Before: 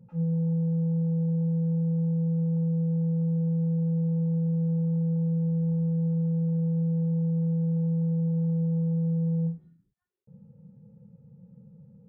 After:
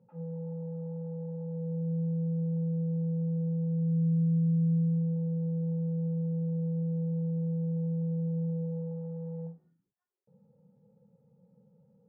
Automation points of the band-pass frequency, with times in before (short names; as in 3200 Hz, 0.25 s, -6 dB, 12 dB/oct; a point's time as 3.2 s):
band-pass, Q 0.98
1.42 s 720 Hz
1.94 s 320 Hz
3.67 s 320 Hz
4.14 s 170 Hz
4.72 s 170 Hz
5.2 s 340 Hz
8.45 s 340 Hz
9.04 s 750 Hz